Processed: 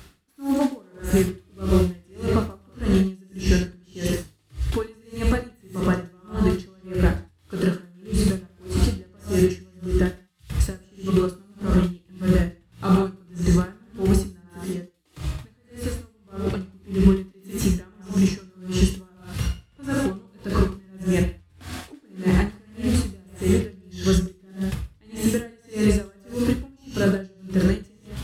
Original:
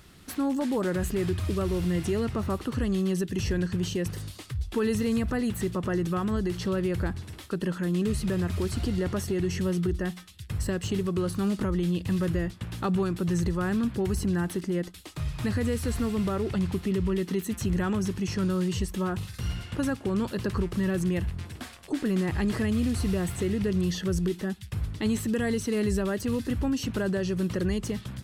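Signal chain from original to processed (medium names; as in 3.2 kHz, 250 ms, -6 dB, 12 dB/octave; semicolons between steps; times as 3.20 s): 14.43–16.47 s: compression 3:1, threshold -35 dBFS, peak gain reduction 9 dB; gated-style reverb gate 220 ms flat, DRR -1 dB; logarithmic tremolo 1.7 Hz, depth 35 dB; trim +6.5 dB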